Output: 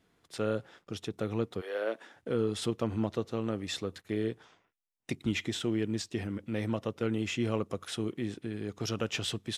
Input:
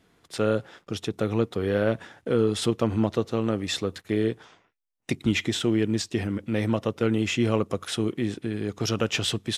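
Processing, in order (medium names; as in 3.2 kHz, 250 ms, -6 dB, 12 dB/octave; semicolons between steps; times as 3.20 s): 1.60–2.15 s: high-pass 580 Hz -> 210 Hz 24 dB/octave; trim -7.5 dB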